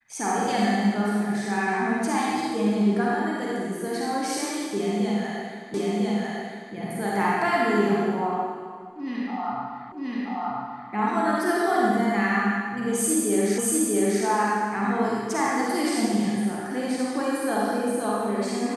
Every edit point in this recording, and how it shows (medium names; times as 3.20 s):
5.74 s: repeat of the last 1 s
9.92 s: repeat of the last 0.98 s
13.58 s: repeat of the last 0.64 s